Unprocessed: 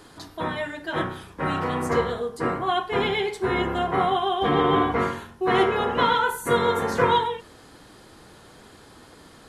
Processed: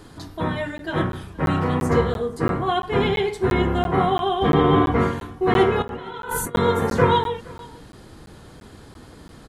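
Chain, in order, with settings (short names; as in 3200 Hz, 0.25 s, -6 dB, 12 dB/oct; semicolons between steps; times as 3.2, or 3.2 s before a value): low shelf 270 Hz +11.5 dB; 5.82–6.55 negative-ratio compressor -32 dBFS, ratio -1; on a send: echo 0.47 s -22.5 dB; on the sum: crackling interface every 0.34 s, samples 512, zero, from 0.78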